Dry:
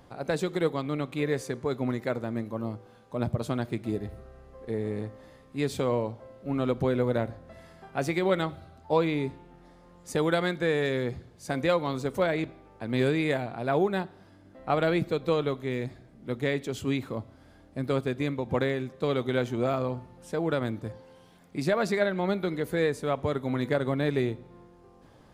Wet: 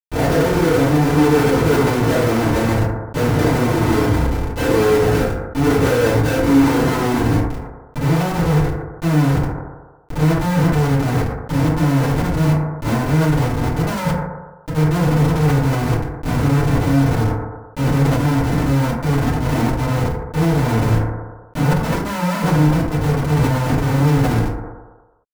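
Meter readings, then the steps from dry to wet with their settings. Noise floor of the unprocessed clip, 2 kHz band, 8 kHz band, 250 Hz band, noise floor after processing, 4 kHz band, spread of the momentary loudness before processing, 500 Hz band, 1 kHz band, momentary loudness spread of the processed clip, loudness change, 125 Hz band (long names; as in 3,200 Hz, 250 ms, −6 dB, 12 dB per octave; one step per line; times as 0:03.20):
−55 dBFS, +10.0 dB, +16.0 dB, +13.5 dB, −41 dBFS, +9.5 dB, 12 LU, +8.0 dB, +12.5 dB, 7 LU, +12.0 dB, +18.0 dB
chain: samples in bit-reversed order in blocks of 16 samples
Butterworth low-pass 8,200 Hz 48 dB per octave
mains-hum notches 60/120 Hz
on a send: ambience of single reflections 21 ms −14.5 dB, 33 ms −16.5 dB, 80 ms −15.5 dB
on the sum: compressor whose output falls as the input rises −32 dBFS, ratio −1
brickwall limiter −27 dBFS, peak gain reduction 11 dB
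low-pass filter sweep 630 Hz → 190 Hz, 0:05.90–0:08.04
all-pass dispersion highs, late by 135 ms, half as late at 1,200 Hz
comparator with hysteresis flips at −36.5 dBFS
leveller curve on the samples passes 1
feedback delay network reverb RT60 0.66 s, low-frequency decay 0.8×, high-frequency decay 0.35×, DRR −10 dB
level that may fall only so fast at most 58 dB per second
level +6.5 dB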